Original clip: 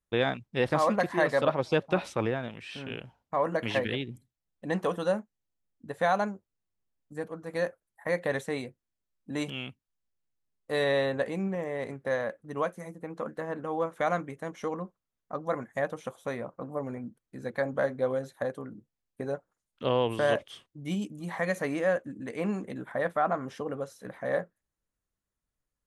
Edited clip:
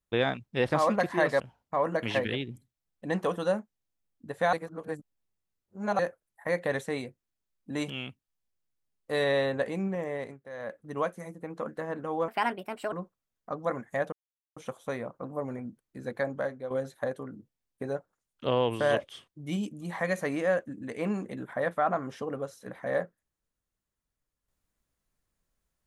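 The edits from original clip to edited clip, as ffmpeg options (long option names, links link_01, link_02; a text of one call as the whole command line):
ffmpeg -i in.wav -filter_complex "[0:a]asplit=10[link_01][link_02][link_03][link_04][link_05][link_06][link_07][link_08][link_09][link_10];[link_01]atrim=end=1.402[link_11];[link_02]atrim=start=2.998:end=6.132[link_12];[link_03]atrim=start=6.128:end=7.592,asetpts=PTS-STARTPTS,areverse[link_13];[link_04]atrim=start=7.588:end=12.01,asetpts=PTS-STARTPTS,afade=type=out:start_time=4.152:duration=0.27:silence=0.199526[link_14];[link_05]atrim=start=12.01:end=12.13,asetpts=PTS-STARTPTS,volume=-14dB[link_15];[link_06]atrim=start=12.13:end=13.884,asetpts=PTS-STARTPTS,afade=type=in:duration=0.27:silence=0.199526[link_16];[link_07]atrim=start=13.88:end=14.75,asetpts=PTS-STARTPTS,asetrate=59535,aresample=44100[link_17];[link_08]atrim=start=14.746:end=15.95,asetpts=PTS-STARTPTS,afade=type=out:start_time=1.2:duration=0.004:curve=hsin,apad=pad_dur=0.44[link_18];[link_09]atrim=start=15.95:end=18.09,asetpts=PTS-STARTPTS,afade=type=in:duration=0.004:curve=hsin,afade=type=out:start_time=1.58:duration=0.56:silence=0.281838[link_19];[link_10]atrim=start=18.09,asetpts=PTS-STARTPTS,afade=type=in:duration=0.004:curve=hsin:silence=0.281838[link_20];[link_11][link_12]acrossfade=duration=0.004:curve1=hsin:curve2=hsin[link_21];[link_21][link_13]acrossfade=duration=0.004:curve1=hsin:curve2=hsin[link_22];[link_14][link_15][link_16]concat=n=3:v=0:a=1[link_23];[link_22][link_23]acrossfade=duration=0.004:curve1=hsin:curve2=hsin[link_24];[link_24][link_17]acrossfade=duration=0.004:curve1=hsin:curve2=hsin[link_25];[link_18][link_19][link_20]concat=n=3:v=0:a=1[link_26];[link_25][link_26]acrossfade=duration=0.004:curve1=hsin:curve2=hsin" out.wav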